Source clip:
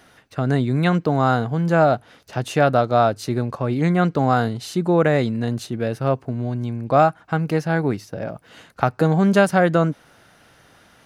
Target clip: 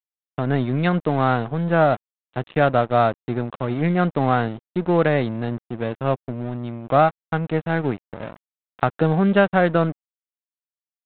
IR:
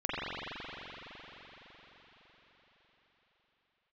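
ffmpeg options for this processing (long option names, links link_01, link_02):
-af "highpass=64,aresample=8000,aeval=exprs='sgn(val(0))*max(abs(val(0))-0.0282,0)':channel_layout=same,aresample=44100"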